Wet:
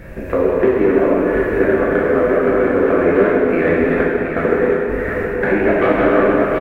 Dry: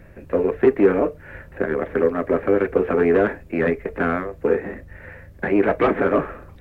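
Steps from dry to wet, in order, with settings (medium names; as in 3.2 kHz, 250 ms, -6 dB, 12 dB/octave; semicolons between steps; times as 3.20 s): chunks repeated in reverse 152 ms, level -6 dB; 3.27–5.44 s: trance gate "x.xx.x.xxx..x" 86 bpm; compression 3:1, threshold -29 dBFS, peak gain reduction 15 dB; delay 721 ms -6.5 dB; plate-style reverb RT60 2.6 s, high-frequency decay 0.85×, DRR -5 dB; trim +9 dB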